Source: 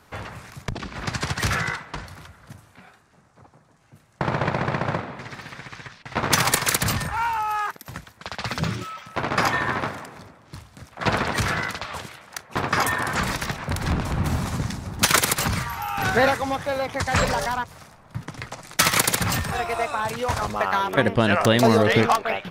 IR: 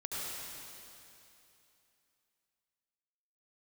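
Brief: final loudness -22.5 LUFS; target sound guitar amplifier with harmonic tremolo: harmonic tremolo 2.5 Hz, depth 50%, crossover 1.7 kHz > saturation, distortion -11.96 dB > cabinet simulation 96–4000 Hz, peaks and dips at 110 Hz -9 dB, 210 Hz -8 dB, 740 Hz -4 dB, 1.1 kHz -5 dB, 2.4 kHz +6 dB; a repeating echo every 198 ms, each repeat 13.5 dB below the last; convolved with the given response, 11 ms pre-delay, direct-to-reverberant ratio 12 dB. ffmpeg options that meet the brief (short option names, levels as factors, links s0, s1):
-filter_complex "[0:a]aecho=1:1:198|396:0.211|0.0444,asplit=2[s0][s1];[1:a]atrim=start_sample=2205,adelay=11[s2];[s1][s2]afir=irnorm=-1:irlink=0,volume=0.178[s3];[s0][s3]amix=inputs=2:normalize=0,acrossover=split=1700[s4][s5];[s4]aeval=exprs='val(0)*(1-0.5/2+0.5/2*cos(2*PI*2.5*n/s))':c=same[s6];[s5]aeval=exprs='val(0)*(1-0.5/2-0.5/2*cos(2*PI*2.5*n/s))':c=same[s7];[s6][s7]amix=inputs=2:normalize=0,asoftclip=threshold=0.133,highpass=96,equalizer=f=110:t=q:w=4:g=-9,equalizer=f=210:t=q:w=4:g=-8,equalizer=f=740:t=q:w=4:g=-4,equalizer=f=1100:t=q:w=4:g=-5,equalizer=f=2400:t=q:w=4:g=6,lowpass=f=4000:w=0.5412,lowpass=f=4000:w=1.3066,volume=2.11"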